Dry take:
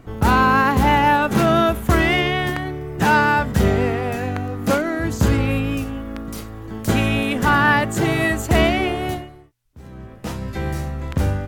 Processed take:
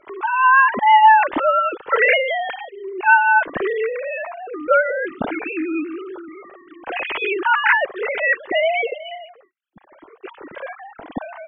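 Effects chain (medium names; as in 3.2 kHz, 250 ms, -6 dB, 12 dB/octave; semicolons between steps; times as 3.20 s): formants replaced by sine waves; 2.52–3.04 s: high-order bell 1.4 kHz -12 dB 1.2 oct; Shepard-style flanger rising 0.7 Hz; trim +4.5 dB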